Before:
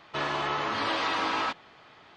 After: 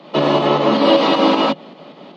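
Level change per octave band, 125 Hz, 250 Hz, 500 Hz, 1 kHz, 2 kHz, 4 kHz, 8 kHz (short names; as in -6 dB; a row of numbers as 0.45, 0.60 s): +17.0 dB, +22.0 dB, +21.0 dB, +11.0 dB, +4.5 dB, +12.0 dB, n/a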